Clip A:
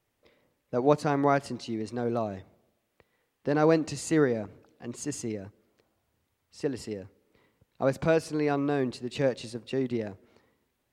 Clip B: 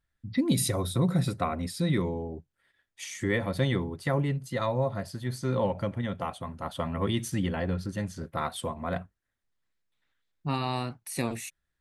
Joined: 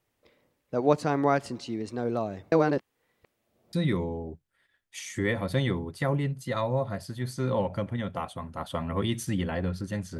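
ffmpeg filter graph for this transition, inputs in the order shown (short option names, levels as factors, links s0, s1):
-filter_complex "[0:a]apad=whole_dur=10.19,atrim=end=10.19,asplit=2[s0][s1];[s0]atrim=end=2.522[s2];[s1]atrim=start=2.518:end=3.732,asetpts=PTS-STARTPTS,areverse[s3];[1:a]atrim=start=1.778:end=8.24[s4];[s2][s3]acrossfade=d=0.004:c1=hsin:c2=hsin[s5];[s5][s4]acrossfade=d=0.004:c1=hsin:c2=hsin"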